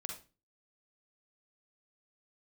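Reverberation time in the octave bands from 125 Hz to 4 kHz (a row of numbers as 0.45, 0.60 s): 0.45, 0.45, 0.35, 0.30, 0.30, 0.30 s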